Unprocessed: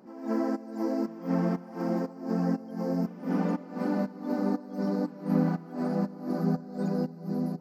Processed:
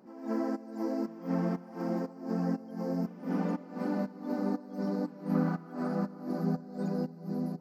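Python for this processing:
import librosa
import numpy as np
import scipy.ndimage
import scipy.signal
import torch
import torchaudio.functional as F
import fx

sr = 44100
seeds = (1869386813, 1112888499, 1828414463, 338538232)

y = fx.peak_eq(x, sr, hz=1300.0, db=7.0, octaves=0.53, at=(5.34, 6.23))
y = y * 10.0 ** (-3.5 / 20.0)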